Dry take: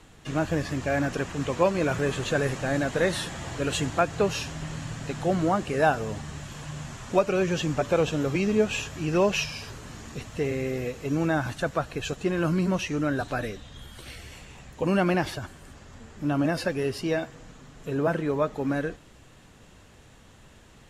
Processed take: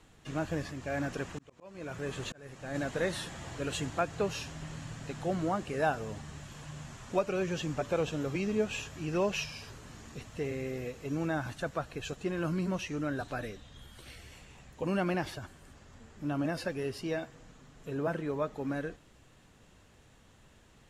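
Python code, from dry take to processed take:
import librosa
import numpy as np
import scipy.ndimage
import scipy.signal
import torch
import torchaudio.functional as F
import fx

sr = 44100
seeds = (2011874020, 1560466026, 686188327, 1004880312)

y = fx.auto_swell(x, sr, attack_ms=668.0, at=(0.7, 2.74), fade=0.02)
y = F.gain(torch.from_numpy(y), -7.5).numpy()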